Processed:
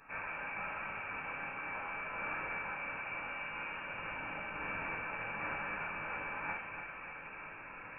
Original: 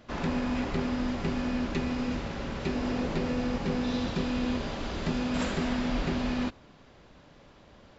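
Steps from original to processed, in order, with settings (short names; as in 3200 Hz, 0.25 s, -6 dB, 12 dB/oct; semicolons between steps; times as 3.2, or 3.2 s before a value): reverse; compressor 16:1, threshold -41 dBFS, peak gain reduction 17 dB; reverse; ladder high-pass 1000 Hz, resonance 30%; fixed phaser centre 1300 Hz, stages 6; on a send: darkening echo 0.292 s, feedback 70%, low-pass 2400 Hz, level -6 dB; on the sum: shoebox room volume 910 m³, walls furnished, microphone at 8 m; inverted band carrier 3300 Hz; gain +12.5 dB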